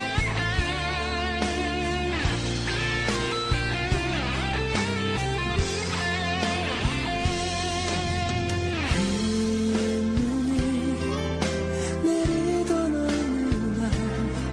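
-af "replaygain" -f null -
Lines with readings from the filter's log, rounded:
track_gain = +9.1 dB
track_peak = 0.174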